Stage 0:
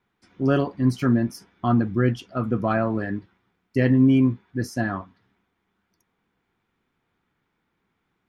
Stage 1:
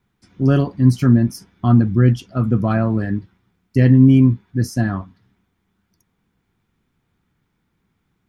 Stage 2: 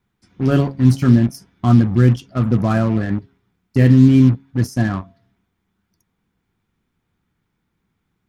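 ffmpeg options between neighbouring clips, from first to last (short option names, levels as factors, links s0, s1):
-af "bass=f=250:g=11,treble=f=4000:g=7"
-filter_complex "[0:a]bandreject=f=135.9:t=h:w=4,bandreject=f=271.8:t=h:w=4,bandreject=f=407.7:t=h:w=4,bandreject=f=543.6:t=h:w=4,bandreject=f=679.5:t=h:w=4,asplit=2[s0][s1];[s1]acrusher=bits=3:mix=0:aa=0.5,volume=0.501[s2];[s0][s2]amix=inputs=2:normalize=0,volume=0.75"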